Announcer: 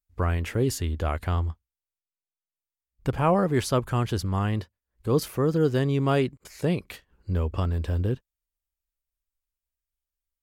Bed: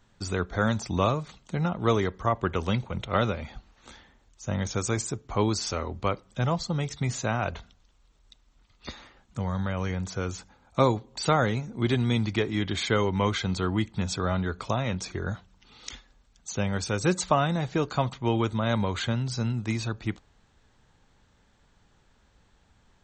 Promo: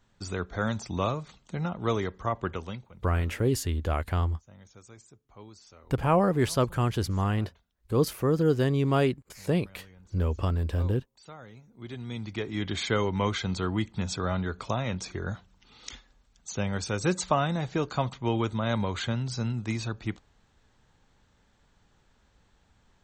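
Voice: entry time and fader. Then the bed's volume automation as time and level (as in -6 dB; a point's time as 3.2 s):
2.85 s, -1.0 dB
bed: 2.49 s -4 dB
3.1 s -23.5 dB
11.42 s -23.5 dB
12.68 s -2 dB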